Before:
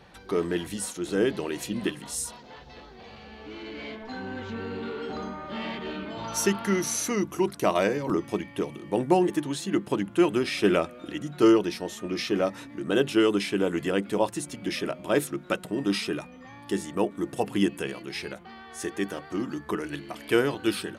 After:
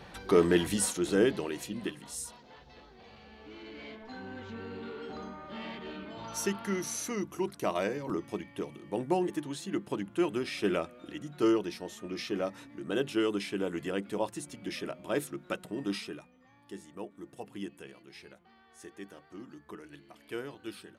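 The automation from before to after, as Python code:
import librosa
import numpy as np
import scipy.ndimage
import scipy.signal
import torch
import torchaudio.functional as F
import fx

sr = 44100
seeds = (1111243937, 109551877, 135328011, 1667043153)

y = fx.gain(x, sr, db=fx.line((0.84, 3.5), (1.77, -7.5), (15.9, -7.5), (16.33, -16.0)))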